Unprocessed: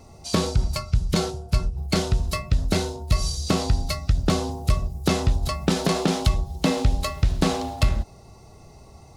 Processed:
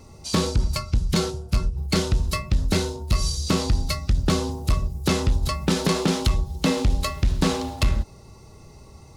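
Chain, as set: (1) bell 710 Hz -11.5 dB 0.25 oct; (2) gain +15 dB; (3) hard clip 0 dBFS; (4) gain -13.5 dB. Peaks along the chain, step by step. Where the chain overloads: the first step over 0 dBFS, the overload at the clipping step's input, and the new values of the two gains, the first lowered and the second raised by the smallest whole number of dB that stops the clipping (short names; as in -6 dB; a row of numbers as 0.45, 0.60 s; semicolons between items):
-7.5, +7.5, 0.0, -13.5 dBFS; step 2, 7.5 dB; step 2 +7 dB, step 4 -5.5 dB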